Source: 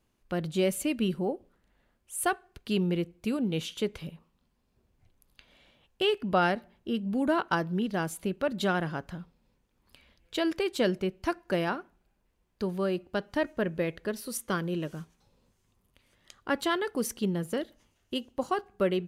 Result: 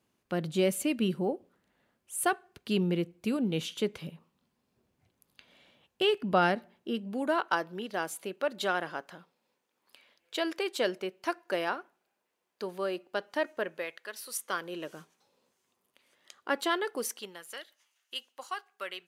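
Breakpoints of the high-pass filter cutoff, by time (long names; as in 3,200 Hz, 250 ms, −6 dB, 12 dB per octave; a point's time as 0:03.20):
0:06.52 130 Hz
0:07.35 430 Hz
0:13.57 430 Hz
0:14.03 1,100 Hz
0:15.01 350 Hz
0:16.91 350 Hz
0:17.45 1,300 Hz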